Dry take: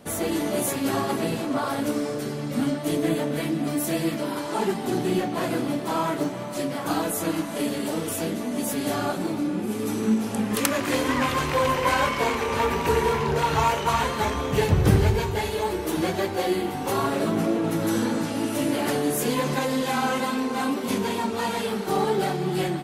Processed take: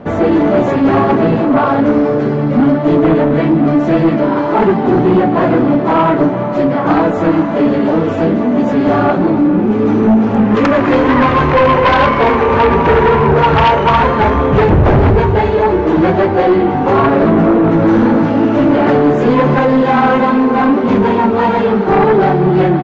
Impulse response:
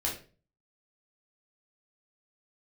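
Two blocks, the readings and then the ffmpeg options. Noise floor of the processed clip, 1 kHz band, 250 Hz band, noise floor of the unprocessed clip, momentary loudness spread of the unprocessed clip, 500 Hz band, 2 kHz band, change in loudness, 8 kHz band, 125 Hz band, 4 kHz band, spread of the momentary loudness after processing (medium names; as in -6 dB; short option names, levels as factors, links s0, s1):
-15 dBFS, +14.0 dB, +15.0 dB, -31 dBFS, 5 LU, +14.5 dB, +11.0 dB, +14.0 dB, under -10 dB, +13.0 dB, +4.0 dB, 3 LU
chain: -af "lowpass=1500,aresample=16000,aeval=exprs='0.562*sin(PI/2*4.47*val(0)/0.562)':c=same,aresample=44100"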